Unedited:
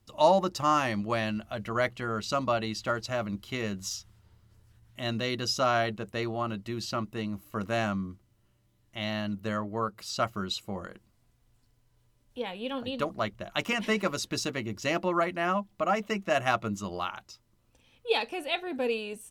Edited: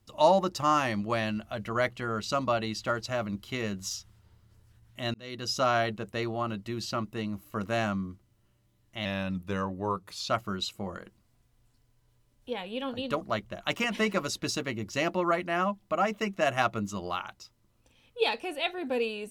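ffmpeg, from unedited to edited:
ffmpeg -i in.wav -filter_complex "[0:a]asplit=4[link_01][link_02][link_03][link_04];[link_01]atrim=end=5.14,asetpts=PTS-STARTPTS,afade=type=out:start_time=5.136:duration=0.004:curve=hsin[link_05];[link_02]atrim=start=5.14:end=9.054,asetpts=PTS-STARTPTS,afade=type=in:duration=0.46[link_06];[link_03]atrim=start=9.05:end=10.18,asetpts=PTS-STARTPTS,asetrate=40131,aresample=44100[link_07];[link_04]atrim=start=10.176[link_08];[link_05][link_06]concat=n=2:v=0:a=1[link_09];[link_09][link_07]acrossfade=duration=0.004:curve1=hsin:curve2=hsin[link_10];[link_10][link_08]acrossfade=duration=0.004:curve1=hsin:curve2=hsin" out.wav

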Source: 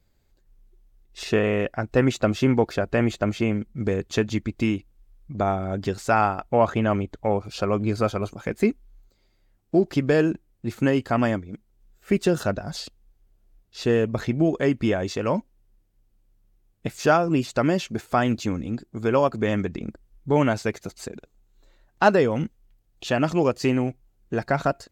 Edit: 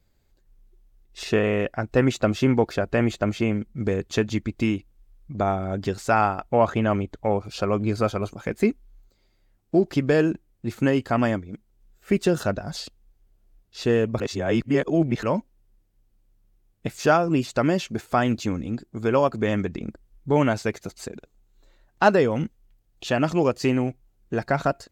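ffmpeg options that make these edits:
ffmpeg -i in.wav -filter_complex "[0:a]asplit=3[link_01][link_02][link_03];[link_01]atrim=end=14.202[link_04];[link_02]atrim=start=14.198:end=15.232,asetpts=PTS-STARTPTS,areverse[link_05];[link_03]atrim=start=15.228[link_06];[link_04][link_05]acrossfade=duration=0.004:curve1=hsin:curve2=hsin[link_07];[link_07][link_06]acrossfade=duration=0.004:curve1=hsin:curve2=hsin" out.wav

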